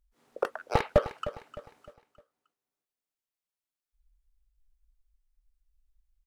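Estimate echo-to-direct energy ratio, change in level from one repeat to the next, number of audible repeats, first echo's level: −13.0 dB, −8.0 dB, 3, −13.5 dB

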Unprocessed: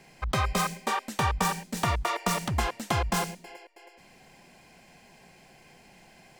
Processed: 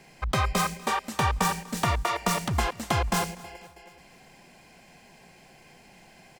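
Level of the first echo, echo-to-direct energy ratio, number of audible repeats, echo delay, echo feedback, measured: −22.0 dB, −20.5 dB, 3, 245 ms, 52%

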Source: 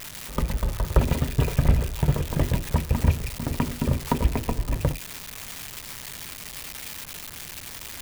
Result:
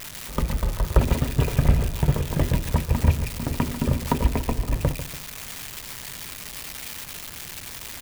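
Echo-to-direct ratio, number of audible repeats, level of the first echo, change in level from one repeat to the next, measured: −11.5 dB, 2, −12.0 dB, −8.0 dB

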